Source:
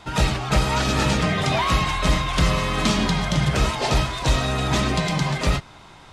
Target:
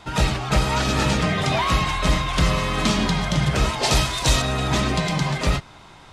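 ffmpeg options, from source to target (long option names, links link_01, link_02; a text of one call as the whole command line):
ffmpeg -i in.wav -filter_complex "[0:a]asettb=1/sr,asplit=3[link_01][link_02][link_03];[link_01]atrim=end=3.834[link_04];[link_02]atrim=start=3.83:end=4.42,asetpts=PTS-STARTPTS,afade=type=in:duration=0.004:curve=qsin,afade=type=out:start_time=0.586:duration=0.004:curve=qsin,highshelf=frequency=3700:gain=10.5[link_05];[link_03]atrim=start=4.416[link_06];[link_04][link_05]acrossfade=duration=0.004:curve1=hsin:curve2=qsin[link_07];[link_07][link_06]acrossfade=duration=0.004:curve1=qsin:curve2=hsin" out.wav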